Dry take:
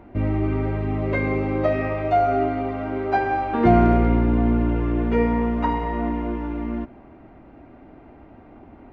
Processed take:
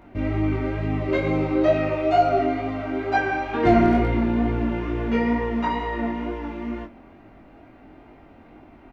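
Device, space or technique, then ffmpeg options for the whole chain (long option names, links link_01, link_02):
double-tracked vocal: -filter_complex "[0:a]highshelf=frequency=2300:gain=11.5,asettb=1/sr,asplit=3[link_01][link_02][link_03];[link_01]atrim=end=1.074[link_04];[link_02]atrim=start=1.07:end=2.39,asetpts=PTS-STARTPTS,afade=type=in:duration=0.004:curve=qsin,afade=type=out:start_time=1.316:duration=0.004:curve=qsin,asplit=2[link_05][link_06];[link_06]adelay=13,volume=-4dB[link_07];[link_05][link_07]amix=inputs=2:normalize=0,atrim=end_sample=58212[link_08];[link_03]atrim=start=2.386[link_09];[link_04][link_08]acrossfade=duration=0.004:curve1=hsin:curve2=qsin[link_10];[link_10][link_09]acrossfade=duration=0.004:curve1=qsin:curve2=hsin,asplit=2[link_11][link_12];[link_12]adelay=26,volume=-9dB[link_13];[link_11][link_13]amix=inputs=2:normalize=0,flanger=delay=19:depth=3.7:speed=2.2"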